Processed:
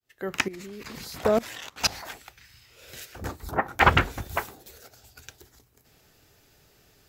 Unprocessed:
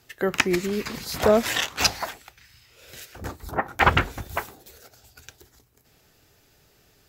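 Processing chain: fade-in on the opening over 0.66 s; 0.48–2.10 s: level held to a coarse grid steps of 20 dB

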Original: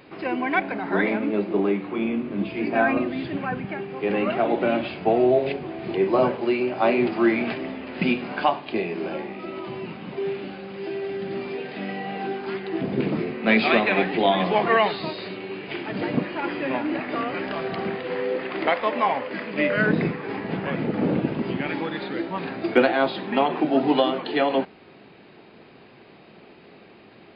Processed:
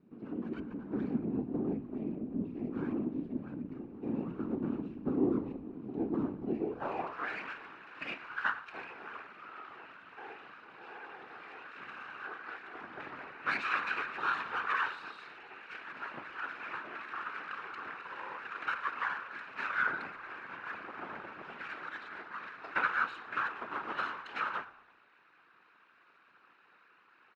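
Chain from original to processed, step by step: comb filter that takes the minimum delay 0.74 ms; de-hum 116.1 Hz, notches 23; whisper effect; band-pass sweep 250 Hz -> 1.5 kHz, 6.52–7.21 s; on a send: frequency-shifting echo 115 ms, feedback 44%, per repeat -78 Hz, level -19.5 dB; on the sum: trim -4 dB

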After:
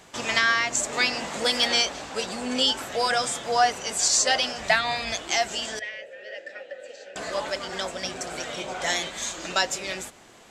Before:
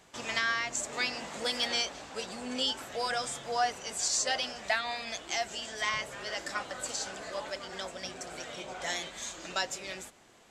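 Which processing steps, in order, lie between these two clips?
4.55–5.15 s: octave divider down 2 oct, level -2 dB; 5.79–7.16 s: vowel filter e; de-hum 45.45 Hz, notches 3; trim +8.5 dB

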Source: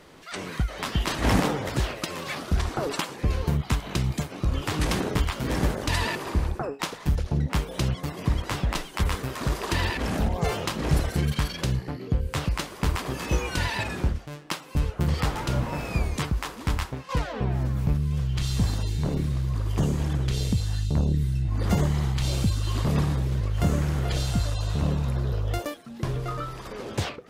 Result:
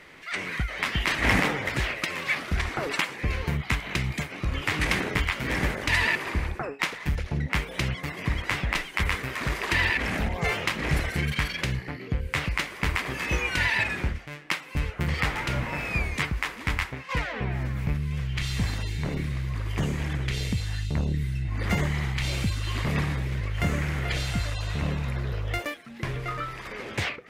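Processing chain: peaking EQ 2.1 kHz +14.5 dB 0.95 oct; trim -3.5 dB

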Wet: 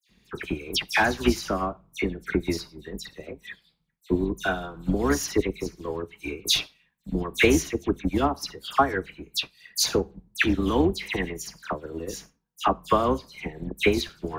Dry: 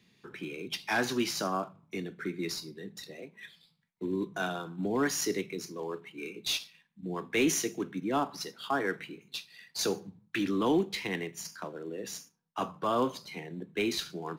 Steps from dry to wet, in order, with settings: octave divider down 2 oct, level -4 dB; transient shaper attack +12 dB, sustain -5 dB; phase dispersion lows, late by 92 ms, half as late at 3 kHz; trim +2 dB

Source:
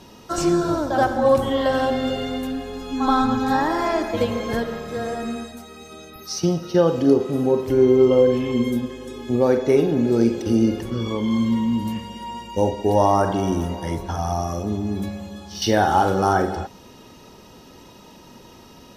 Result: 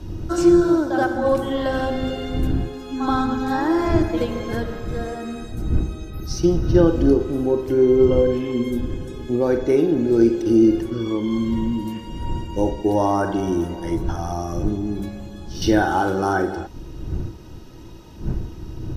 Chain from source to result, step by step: wind noise 93 Hz -25 dBFS; small resonant body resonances 330/1500 Hz, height 13 dB, ringing for 75 ms; trim -3.5 dB

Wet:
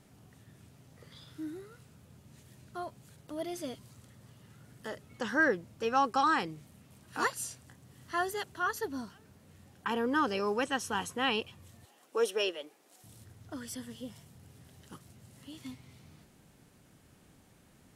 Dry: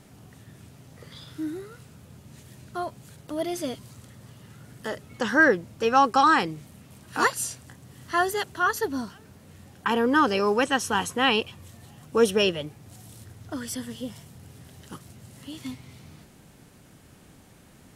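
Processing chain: 11.85–13.04 s: high-pass 330 Hz 24 dB/octave; trim -8.5 dB

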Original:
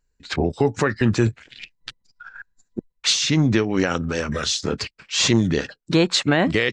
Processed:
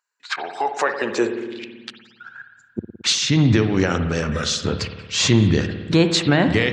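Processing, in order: spring tank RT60 1.4 s, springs 55 ms, chirp 40 ms, DRR 7.5 dB; high-pass sweep 1.1 kHz -> 87 Hz, 0.35–2.86 s

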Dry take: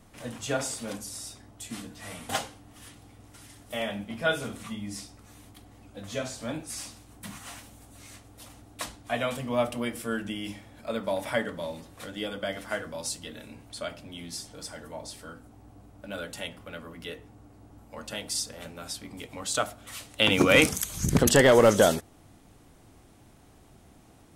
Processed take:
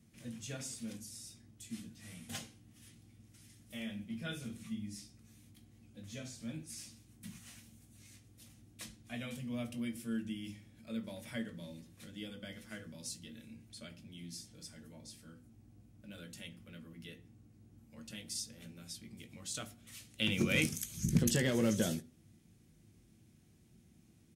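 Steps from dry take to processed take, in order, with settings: amplifier tone stack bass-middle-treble 10-0-1; doubling 18 ms -11.5 dB; reverberation RT60 0.35 s, pre-delay 3 ms, DRR 12.5 dB; trim +10 dB

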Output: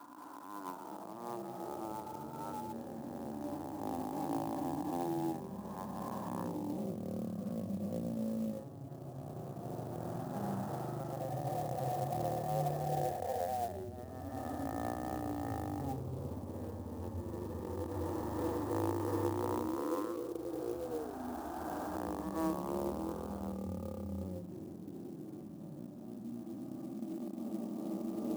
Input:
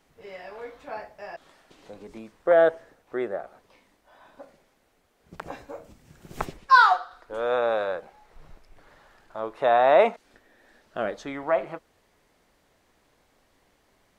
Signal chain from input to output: reverse spectral sustain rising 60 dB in 2.59 s; distance through air 350 m; LPC vocoder at 8 kHz pitch kept; high-pass 1.4 kHz 12 dB/octave; compression 8:1, threshold -35 dBFS, peak gain reduction 21.5 dB; ever faster or slower copies 272 ms, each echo -7 st, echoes 3; rotary cabinet horn 5.5 Hz; harmonic-percussive split percussive -17 dB; speed mistake 15 ips tape played at 7.5 ips; sampling jitter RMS 0.033 ms; trim +8 dB

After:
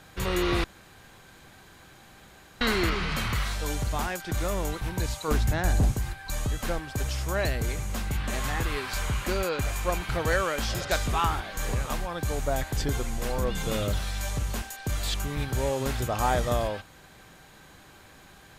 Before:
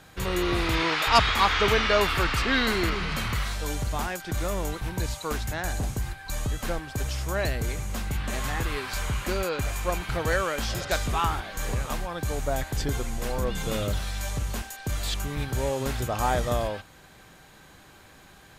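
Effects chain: 0.64–2.61 s: room tone; 5.28–5.92 s: bass shelf 490 Hz +7.5 dB

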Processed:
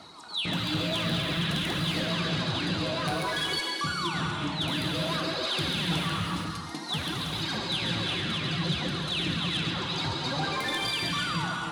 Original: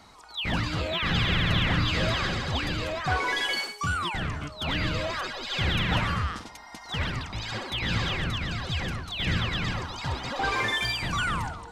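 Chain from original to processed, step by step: reverb removal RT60 0.51 s; treble shelf 9.1 kHz -12 dB; reverb removal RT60 0.81 s; compression 3:1, threshold -34 dBFS, peak gain reduction 9.5 dB; integer overflow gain 24 dB; high-pass 110 Hz 12 dB/octave; on a send: feedback echo behind a high-pass 139 ms, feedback 37%, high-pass 3.7 kHz, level -6.5 dB; on the sum: gated-style reverb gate 500 ms flat, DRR -0.5 dB; flange 0.55 Hz, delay 1.4 ms, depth 9.4 ms, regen +62%; sine folder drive 4 dB, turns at -25 dBFS; graphic EQ with 31 bands 160 Hz +8 dB, 315 Hz +8 dB, 2 kHz -5 dB, 4 kHz +8 dB, 10 kHz +9 dB

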